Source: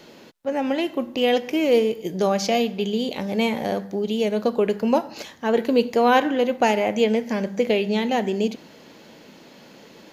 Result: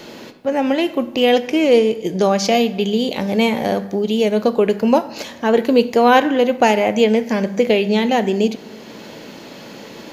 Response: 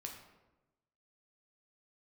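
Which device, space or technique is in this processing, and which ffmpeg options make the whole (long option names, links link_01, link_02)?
ducked reverb: -filter_complex "[0:a]asplit=3[link_01][link_02][link_03];[1:a]atrim=start_sample=2205[link_04];[link_02][link_04]afir=irnorm=-1:irlink=0[link_05];[link_03]apad=whole_len=446587[link_06];[link_05][link_06]sidechaincompress=threshold=-35dB:ratio=8:attack=16:release=433,volume=4.5dB[link_07];[link_01][link_07]amix=inputs=2:normalize=0,asettb=1/sr,asplit=3[link_08][link_09][link_10];[link_08]atrim=end=1.474[link_11];[link_09]atrim=start=1.47:end=2.45,asetpts=PTS-STARTPTS,afade=type=in:duration=0.004:curve=qsin,afade=type=out:start_time=0.976:duration=0.004:curve=qsin,lowpass=frequency=11000:width=0.5412,lowpass=frequency=11000:width=1.3066[link_12];[link_10]atrim=start=2.446[link_13];[link_11][link_12]acrossfade=duration=0.004:curve1=hsin:curve2=qsin[link_14];[link_14][link_13]acrossfade=duration=0.004:curve1=qsin:curve2=hsin,volume=4.5dB"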